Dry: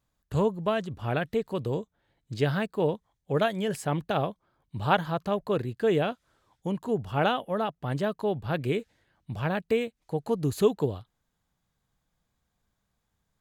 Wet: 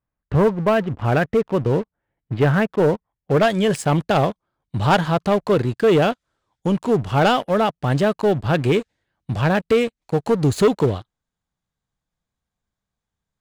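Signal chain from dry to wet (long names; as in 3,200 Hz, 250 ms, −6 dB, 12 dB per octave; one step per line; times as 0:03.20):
low-pass filter 2,500 Hz 24 dB per octave, from 0:03.43 9,900 Hz
leveller curve on the samples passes 3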